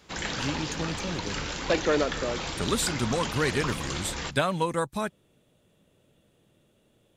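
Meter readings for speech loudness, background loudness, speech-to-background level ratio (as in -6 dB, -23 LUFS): -30.0 LUFS, -32.5 LUFS, 2.5 dB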